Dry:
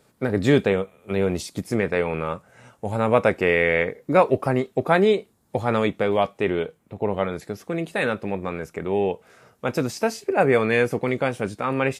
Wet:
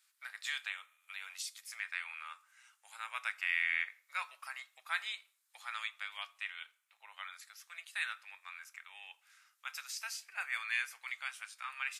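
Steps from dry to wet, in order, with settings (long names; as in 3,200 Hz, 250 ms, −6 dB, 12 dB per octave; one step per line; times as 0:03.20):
Bessel high-pass filter 2,100 Hz, order 6
on a send: convolution reverb RT60 0.60 s, pre-delay 3 ms, DRR 16 dB
on the sum: level −6 dB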